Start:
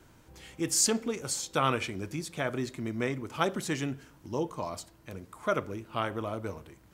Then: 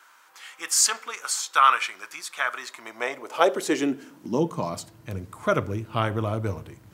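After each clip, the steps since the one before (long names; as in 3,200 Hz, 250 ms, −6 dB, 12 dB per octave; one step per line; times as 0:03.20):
high-pass filter sweep 1,200 Hz → 99 Hz, 0:02.59–0:05.03
level +5.5 dB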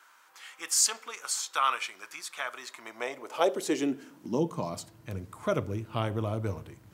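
dynamic equaliser 1,500 Hz, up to −7 dB, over −37 dBFS, Q 1.2
level −4 dB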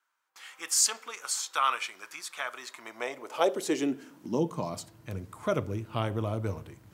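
noise gate with hold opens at −46 dBFS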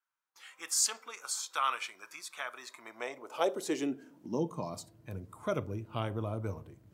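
noise reduction from a noise print of the clip's start 8 dB
level −4.5 dB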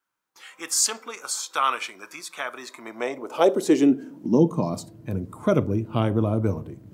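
parametric band 230 Hz +10 dB 2.3 octaves
level +7 dB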